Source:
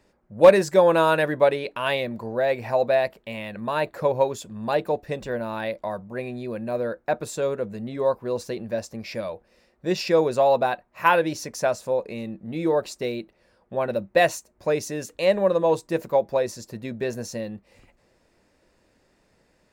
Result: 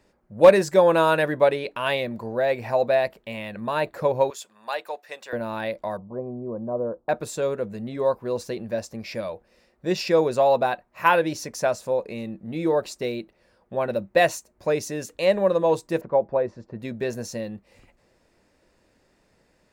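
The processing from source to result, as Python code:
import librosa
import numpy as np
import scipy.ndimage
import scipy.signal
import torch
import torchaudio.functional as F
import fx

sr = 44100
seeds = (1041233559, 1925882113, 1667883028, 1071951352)

y = fx.highpass(x, sr, hz=910.0, slope=12, at=(4.3, 5.33))
y = fx.cheby1_lowpass(y, sr, hz=1100.0, order=4, at=(5.97, 7.09))
y = fx.lowpass(y, sr, hz=1500.0, slope=12, at=(16.01, 16.8))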